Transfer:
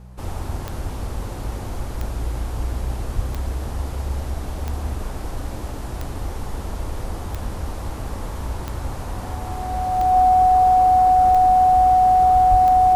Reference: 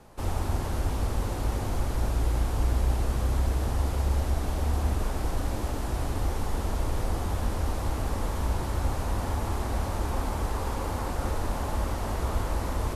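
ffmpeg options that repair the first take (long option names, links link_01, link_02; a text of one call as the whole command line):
ffmpeg -i in.wav -filter_complex "[0:a]adeclick=threshold=4,bandreject=frequency=62.1:width_type=h:width=4,bandreject=frequency=124.2:width_type=h:width=4,bandreject=frequency=186.3:width_type=h:width=4,bandreject=frequency=740:width=30,asplit=3[link_01][link_02][link_03];[link_01]afade=type=out:start_time=3.15:duration=0.02[link_04];[link_02]highpass=frequency=140:width=0.5412,highpass=frequency=140:width=1.3066,afade=type=in:start_time=3.15:duration=0.02,afade=type=out:start_time=3.27:duration=0.02[link_05];[link_03]afade=type=in:start_time=3.27:duration=0.02[link_06];[link_04][link_05][link_06]amix=inputs=3:normalize=0,asplit=3[link_07][link_08][link_09];[link_07]afade=type=out:start_time=12.5:duration=0.02[link_10];[link_08]highpass=frequency=140:width=0.5412,highpass=frequency=140:width=1.3066,afade=type=in:start_time=12.5:duration=0.02,afade=type=out:start_time=12.62:duration=0.02[link_11];[link_09]afade=type=in:start_time=12.62:duration=0.02[link_12];[link_10][link_11][link_12]amix=inputs=3:normalize=0" out.wav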